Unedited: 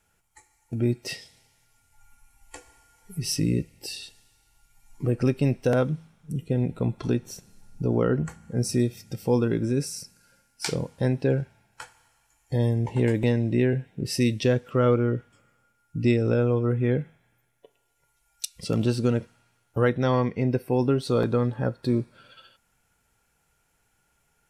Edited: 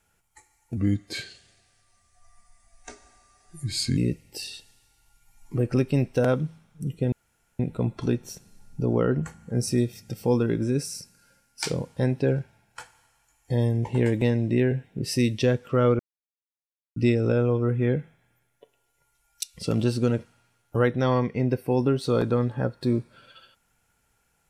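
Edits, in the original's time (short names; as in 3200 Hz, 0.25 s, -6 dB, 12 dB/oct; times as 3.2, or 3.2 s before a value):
0.77–3.46 speed 84%
6.61 insert room tone 0.47 s
15.01–15.98 mute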